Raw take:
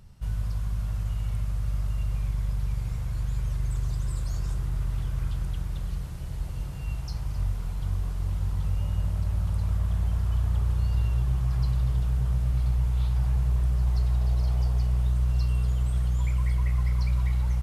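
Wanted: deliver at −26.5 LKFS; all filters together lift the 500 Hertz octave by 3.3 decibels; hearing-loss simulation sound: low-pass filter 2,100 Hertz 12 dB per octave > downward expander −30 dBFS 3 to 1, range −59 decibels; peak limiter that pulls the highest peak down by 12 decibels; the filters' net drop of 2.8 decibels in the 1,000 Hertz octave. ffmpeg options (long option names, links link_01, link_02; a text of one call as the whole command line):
ffmpeg -i in.wav -af "equalizer=frequency=500:width_type=o:gain=5.5,equalizer=frequency=1000:width_type=o:gain=-5,alimiter=level_in=3.5dB:limit=-24dB:level=0:latency=1,volume=-3.5dB,lowpass=2100,agate=range=-59dB:threshold=-30dB:ratio=3,volume=10dB" out.wav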